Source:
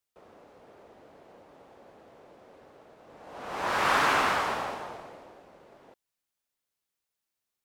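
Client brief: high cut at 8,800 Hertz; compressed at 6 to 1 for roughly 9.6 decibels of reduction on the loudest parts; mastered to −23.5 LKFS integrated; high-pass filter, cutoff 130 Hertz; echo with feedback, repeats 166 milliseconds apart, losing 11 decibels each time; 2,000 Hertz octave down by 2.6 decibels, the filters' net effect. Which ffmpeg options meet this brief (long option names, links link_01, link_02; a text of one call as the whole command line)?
ffmpeg -i in.wav -af "highpass=130,lowpass=8800,equalizer=frequency=2000:width_type=o:gain=-3.5,acompressor=threshold=-32dB:ratio=6,aecho=1:1:166|332|498:0.282|0.0789|0.0221,volume=13dB" out.wav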